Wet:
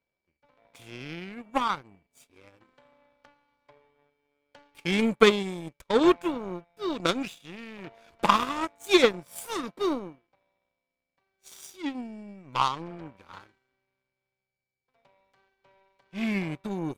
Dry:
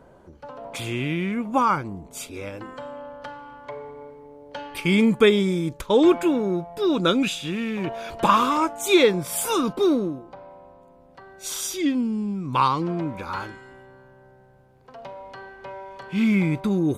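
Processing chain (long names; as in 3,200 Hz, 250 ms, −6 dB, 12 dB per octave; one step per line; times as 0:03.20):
steady tone 2,300 Hz −49 dBFS
power curve on the samples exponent 2
level +3 dB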